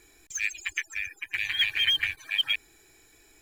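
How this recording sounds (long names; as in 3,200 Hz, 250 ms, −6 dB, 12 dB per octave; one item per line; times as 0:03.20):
IMA ADPCM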